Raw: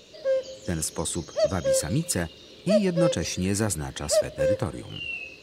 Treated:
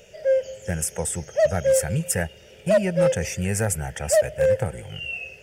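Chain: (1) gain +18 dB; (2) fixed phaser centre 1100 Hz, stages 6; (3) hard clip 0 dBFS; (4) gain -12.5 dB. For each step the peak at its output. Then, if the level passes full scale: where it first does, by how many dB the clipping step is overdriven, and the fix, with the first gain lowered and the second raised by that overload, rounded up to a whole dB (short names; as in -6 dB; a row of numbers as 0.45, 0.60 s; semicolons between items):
+8.5, +5.5, 0.0, -12.5 dBFS; step 1, 5.5 dB; step 1 +12 dB, step 4 -6.5 dB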